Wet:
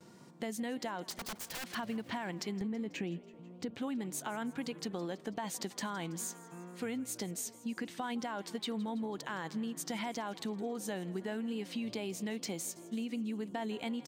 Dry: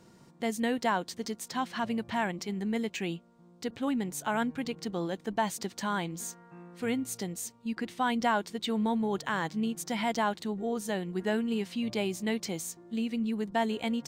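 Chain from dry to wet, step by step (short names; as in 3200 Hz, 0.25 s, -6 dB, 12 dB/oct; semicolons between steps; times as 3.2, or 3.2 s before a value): HPF 120 Hz 12 dB/oct; gate with hold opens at -54 dBFS; 2.61–3.75 tilt -2.5 dB/oct; limiter -24.5 dBFS, peak gain reduction 9.5 dB; compressor, threshold -36 dBFS, peak gain reduction 8.5 dB; 1.1–1.75 wrapped overs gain 36.5 dB; wow and flutter 33 cents; frequency-shifting echo 0.164 s, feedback 63%, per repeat +56 Hz, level -20 dB; gain +1 dB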